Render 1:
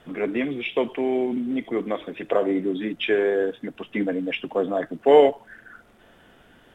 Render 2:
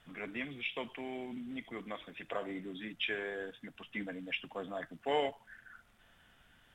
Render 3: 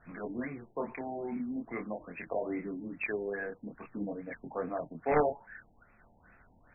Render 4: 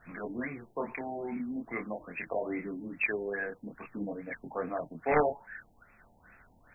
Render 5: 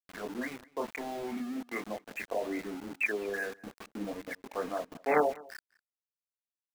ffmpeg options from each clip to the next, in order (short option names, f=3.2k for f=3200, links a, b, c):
-af "equalizer=f=390:t=o:w=2:g=-14.5,volume=-6.5dB"
-af "aeval=exprs='(mod(13.3*val(0)+1,2)-1)/13.3':c=same,flanger=delay=22.5:depth=7.1:speed=0.44,afftfilt=real='re*lt(b*sr/1024,920*pow(2700/920,0.5+0.5*sin(2*PI*2.4*pts/sr)))':imag='im*lt(b*sr/1024,920*pow(2700/920,0.5+0.5*sin(2*PI*2.4*pts/sr)))':win_size=1024:overlap=0.75,volume=8.5dB"
-af "highshelf=f=2.3k:g=11.5"
-filter_complex "[0:a]highpass=f=190:w=0.5412,highpass=f=190:w=1.3066,aeval=exprs='val(0)*gte(abs(val(0)),0.00841)':c=same,asplit=2[a][b];[b]adelay=204.1,volume=-23dB,highshelf=f=4k:g=-4.59[c];[a][c]amix=inputs=2:normalize=0"